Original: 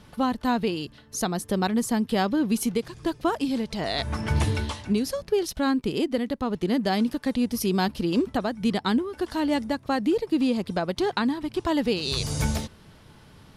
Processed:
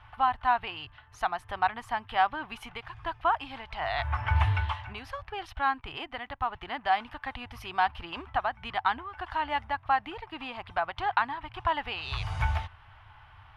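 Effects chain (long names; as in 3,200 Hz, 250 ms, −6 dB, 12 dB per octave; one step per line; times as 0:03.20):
drawn EQ curve 110 Hz 0 dB, 190 Hz −29 dB, 280 Hz −21 dB, 500 Hz −20 dB, 760 Hz +4 dB, 1,200 Hz +4 dB, 3,000 Hz −1 dB, 4,200 Hz −15 dB, 7,200 Hz −25 dB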